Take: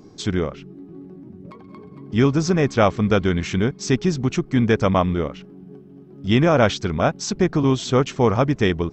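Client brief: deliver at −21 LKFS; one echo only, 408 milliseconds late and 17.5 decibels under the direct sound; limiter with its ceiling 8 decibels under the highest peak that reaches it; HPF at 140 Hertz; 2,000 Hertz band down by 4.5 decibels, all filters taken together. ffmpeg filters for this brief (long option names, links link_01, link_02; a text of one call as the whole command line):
ffmpeg -i in.wav -af "highpass=140,equalizer=frequency=2000:width_type=o:gain=-6,alimiter=limit=-10.5dB:level=0:latency=1,aecho=1:1:408:0.133,volume=2dB" out.wav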